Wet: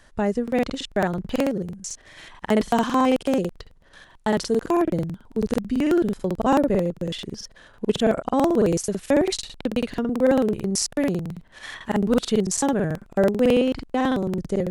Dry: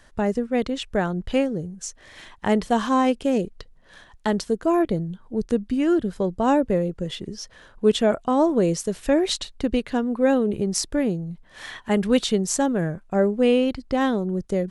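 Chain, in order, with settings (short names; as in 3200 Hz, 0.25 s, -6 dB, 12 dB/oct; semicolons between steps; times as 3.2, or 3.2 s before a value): crackling interface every 0.11 s, samples 2048, repeat, from 0.43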